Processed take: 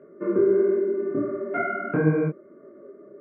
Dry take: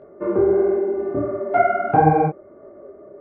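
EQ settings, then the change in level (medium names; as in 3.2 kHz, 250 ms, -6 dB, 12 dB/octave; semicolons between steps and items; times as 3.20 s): high-pass 160 Hz 24 dB/octave; distance through air 370 m; static phaser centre 1.9 kHz, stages 4; +1.5 dB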